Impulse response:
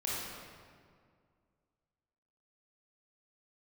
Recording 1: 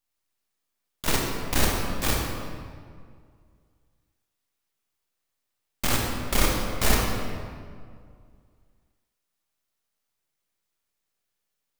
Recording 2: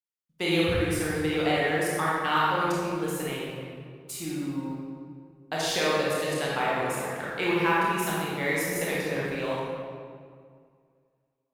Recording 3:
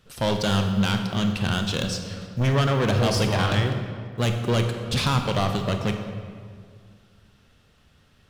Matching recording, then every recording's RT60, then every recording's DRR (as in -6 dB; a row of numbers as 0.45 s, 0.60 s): 2; 2.0 s, 2.0 s, 2.1 s; -2.0 dB, -6.5 dB, 5.0 dB